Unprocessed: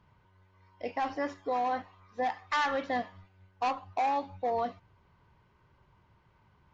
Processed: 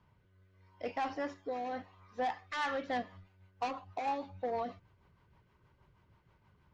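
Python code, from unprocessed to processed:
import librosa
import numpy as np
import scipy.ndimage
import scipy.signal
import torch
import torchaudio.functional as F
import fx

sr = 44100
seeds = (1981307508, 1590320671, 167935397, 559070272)

y = fx.rotary_switch(x, sr, hz=0.8, then_hz=6.3, switch_at_s=2.24)
y = fx.cheby_harmonics(y, sr, harmonics=(5,), levels_db=(-20,), full_scale_db=-20.0)
y = y * librosa.db_to_amplitude(-4.0)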